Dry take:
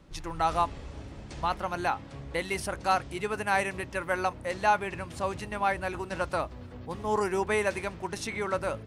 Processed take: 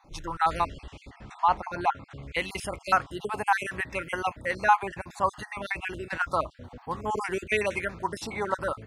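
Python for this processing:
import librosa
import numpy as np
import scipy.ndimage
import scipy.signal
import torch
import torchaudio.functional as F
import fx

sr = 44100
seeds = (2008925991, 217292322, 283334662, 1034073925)

y = fx.spec_dropout(x, sr, seeds[0], share_pct=37)
y = fx.air_absorb(y, sr, metres=58.0, at=(1.1, 2.23))
y = fx.bell_lfo(y, sr, hz=0.6, low_hz=810.0, high_hz=2700.0, db=10)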